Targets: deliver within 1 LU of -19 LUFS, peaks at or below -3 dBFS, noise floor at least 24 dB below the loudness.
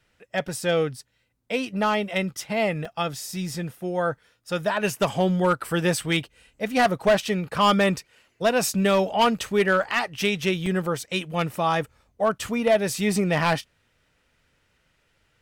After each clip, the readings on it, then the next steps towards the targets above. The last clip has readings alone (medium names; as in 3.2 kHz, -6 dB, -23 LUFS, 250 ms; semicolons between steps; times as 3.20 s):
clipped samples 0.5%; clipping level -13.5 dBFS; dropouts 4; longest dropout 4.0 ms; loudness -24.0 LUFS; peak level -13.5 dBFS; loudness target -19.0 LUFS
-> clip repair -13.5 dBFS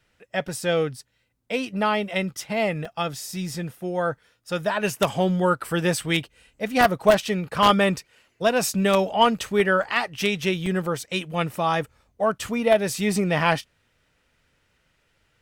clipped samples 0.0%; dropouts 4; longest dropout 4.0 ms
-> interpolate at 0.48/2.85/9.83/10.66 s, 4 ms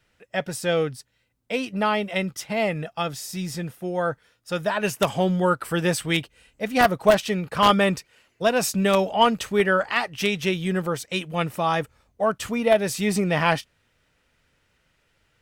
dropouts 0; loudness -23.5 LUFS; peak level -4.5 dBFS; loudness target -19.0 LUFS
-> trim +4.5 dB; peak limiter -3 dBFS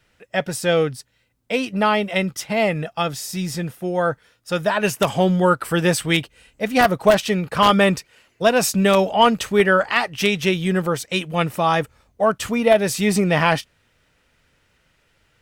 loudness -19.5 LUFS; peak level -3.0 dBFS; noise floor -64 dBFS